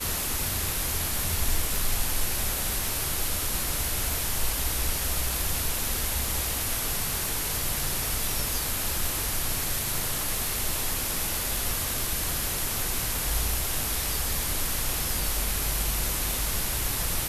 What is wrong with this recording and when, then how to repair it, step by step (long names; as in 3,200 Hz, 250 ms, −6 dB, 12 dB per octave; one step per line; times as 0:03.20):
surface crackle 55 per second −33 dBFS
0:01.76: click
0:16.31: click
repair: click removal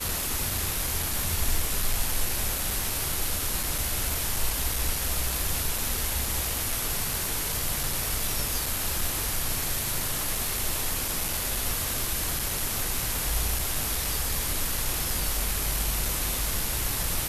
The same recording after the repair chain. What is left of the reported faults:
0:16.31: click